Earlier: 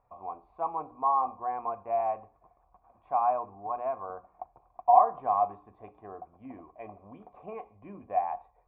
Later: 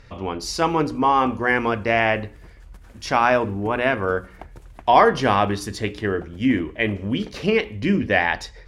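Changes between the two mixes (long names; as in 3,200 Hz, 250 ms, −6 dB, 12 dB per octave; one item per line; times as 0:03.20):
background −5.5 dB
master: remove formant resonators in series a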